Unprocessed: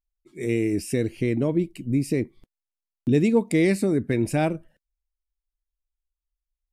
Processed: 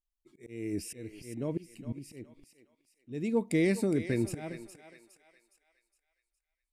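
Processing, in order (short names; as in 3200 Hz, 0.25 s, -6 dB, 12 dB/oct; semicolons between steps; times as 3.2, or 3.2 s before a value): auto swell 0.375 s; thinning echo 0.413 s, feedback 43%, high-pass 680 Hz, level -9.5 dB; gain -6.5 dB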